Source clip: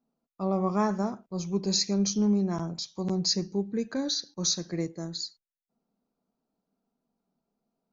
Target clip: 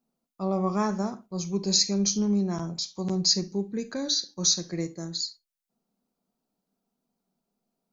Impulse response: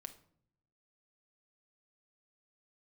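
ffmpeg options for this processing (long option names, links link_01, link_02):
-filter_complex "[0:a]asplit=2[link_01][link_02];[1:a]atrim=start_sample=2205,atrim=end_sample=3528,highshelf=frequency=2800:gain=10.5[link_03];[link_02][link_03]afir=irnorm=-1:irlink=0,volume=7dB[link_04];[link_01][link_04]amix=inputs=2:normalize=0,volume=-7.5dB"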